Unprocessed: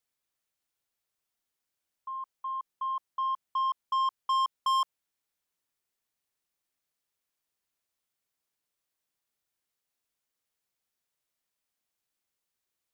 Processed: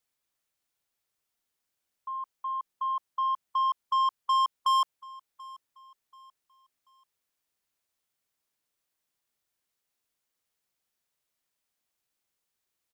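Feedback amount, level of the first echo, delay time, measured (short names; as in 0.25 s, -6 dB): 37%, -22.5 dB, 0.735 s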